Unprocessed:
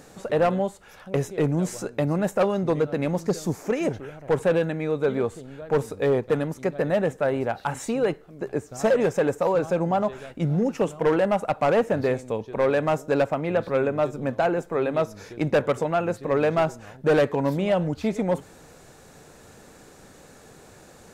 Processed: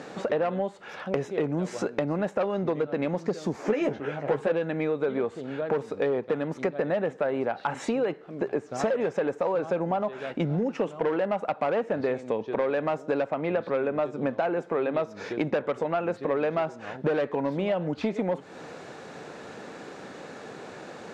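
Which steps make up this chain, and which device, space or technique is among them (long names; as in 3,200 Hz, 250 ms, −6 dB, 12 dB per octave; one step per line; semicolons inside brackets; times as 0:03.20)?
AM radio (band-pass filter 200–3,700 Hz; downward compressor 6 to 1, threshold −33 dBFS, peak gain reduction 16 dB; soft clipping −21.5 dBFS, distortion −27 dB)
0:03.53–0:04.52: double-tracking delay 14 ms −4.5 dB
level +9 dB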